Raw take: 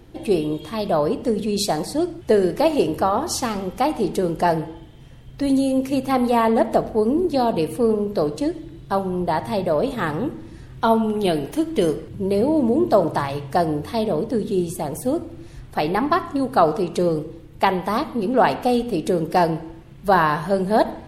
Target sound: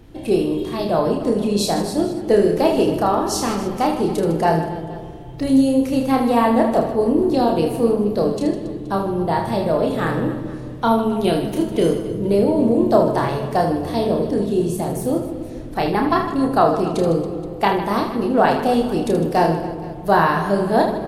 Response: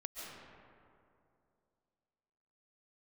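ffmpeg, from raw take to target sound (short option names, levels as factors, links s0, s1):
-filter_complex "[0:a]aecho=1:1:30|78|154.8|277.7|474.3:0.631|0.398|0.251|0.158|0.1,asplit=2[s0][s1];[1:a]atrim=start_sample=2205,lowshelf=f=470:g=12[s2];[s1][s2]afir=irnorm=-1:irlink=0,volume=0.224[s3];[s0][s3]amix=inputs=2:normalize=0,volume=0.794"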